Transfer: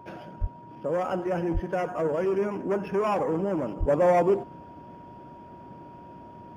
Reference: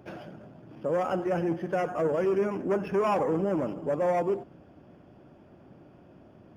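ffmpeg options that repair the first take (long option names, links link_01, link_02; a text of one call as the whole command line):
ffmpeg -i in.wav -filter_complex "[0:a]bandreject=frequency=950:width=30,asplit=3[link_01][link_02][link_03];[link_01]afade=type=out:start_time=0.4:duration=0.02[link_04];[link_02]highpass=frequency=140:width=0.5412,highpass=frequency=140:width=1.3066,afade=type=in:start_time=0.4:duration=0.02,afade=type=out:start_time=0.52:duration=0.02[link_05];[link_03]afade=type=in:start_time=0.52:duration=0.02[link_06];[link_04][link_05][link_06]amix=inputs=3:normalize=0,asplit=3[link_07][link_08][link_09];[link_07]afade=type=out:start_time=1.53:duration=0.02[link_10];[link_08]highpass=frequency=140:width=0.5412,highpass=frequency=140:width=1.3066,afade=type=in:start_time=1.53:duration=0.02,afade=type=out:start_time=1.65:duration=0.02[link_11];[link_09]afade=type=in:start_time=1.65:duration=0.02[link_12];[link_10][link_11][link_12]amix=inputs=3:normalize=0,asplit=3[link_13][link_14][link_15];[link_13]afade=type=out:start_time=3.79:duration=0.02[link_16];[link_14]highpass=frequency=140:width=0.5412,highpass=frequency=140:width=1.3066,afade=type=in:start_time=3.79:duration=0.02,afade=type=out:start_time=3.91:duration=0.02[link_17];[link_15]afade=type=in:start_time=3.91:duration=0.02[link_18];[link_16][link_17][link_18]amix=inputs=3:normalize=0,asetnsamples=nb_out_samples=441:pad=0,asendcmd='3.88 volume volume -5.5dB',volume=0dB" out.wav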